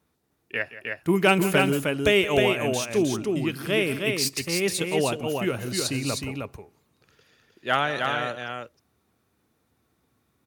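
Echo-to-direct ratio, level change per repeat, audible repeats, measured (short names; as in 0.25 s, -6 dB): -3.5 dB, no steady repeat, 2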